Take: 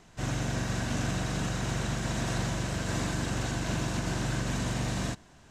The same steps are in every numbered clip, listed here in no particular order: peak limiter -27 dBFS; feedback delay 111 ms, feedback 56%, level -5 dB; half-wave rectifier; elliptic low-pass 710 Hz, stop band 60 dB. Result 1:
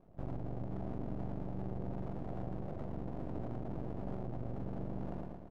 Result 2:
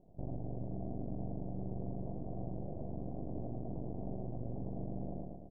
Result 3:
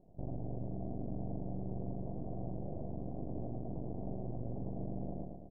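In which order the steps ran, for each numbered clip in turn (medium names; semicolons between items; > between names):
feedback delay > peak limiter > elliptic low-pass > half-wave rectifier; feedback delay > peak limiter > half-wave rectifier > elliptic low-pass; feedback delay > half-wave rectifier > peak limiter > elliptic low-pass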